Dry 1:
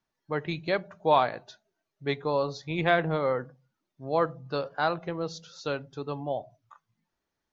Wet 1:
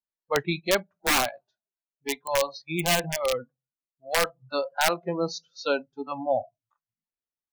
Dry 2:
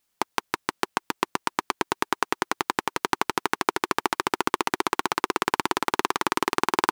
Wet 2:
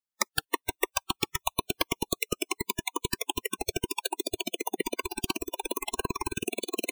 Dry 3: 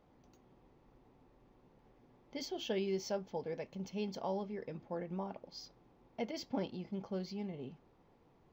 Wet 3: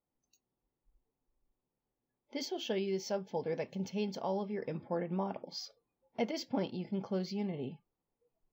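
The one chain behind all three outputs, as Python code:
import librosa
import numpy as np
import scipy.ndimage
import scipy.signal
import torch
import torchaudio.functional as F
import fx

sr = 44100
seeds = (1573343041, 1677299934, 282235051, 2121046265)

y = (np.mod(10.0 ** (16.5 / 20.0) * x + 1.0, 2.0) - 1.0) / 10.0 ** (16.5 / 20.0)
y = fx.rider(y, sr, range_db=3, speed_s=0.5)
y = fx.noise_reduce_blind(y, sr, reduce_db=28)
y = y * 10.0 ** (4.0 / 20.0)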